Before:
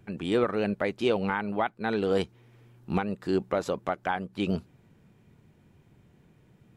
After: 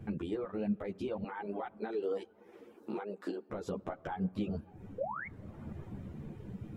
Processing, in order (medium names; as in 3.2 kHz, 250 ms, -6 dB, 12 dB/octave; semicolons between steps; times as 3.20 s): 4.98–5.27 s: painted sound rise 470–2300 Hz -38 dBFS; compression 12:1, threshold -40 dBFS, peak gain reduction 20 dB; 1.23–3.50 s: high-pass 310 Hz 24 dB/octave; reverberation RT60 3.3 s, pre-delay 6 ms, DRR 15 dB; reverb removal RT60 0.76 s; peak limiter -37.5 dBFS, peak gain reduction 10 dB; gain riding within 4 dB 0.5 s; tilt shelf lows +6.5 dB; three-phase chorus; trim +9.5 dB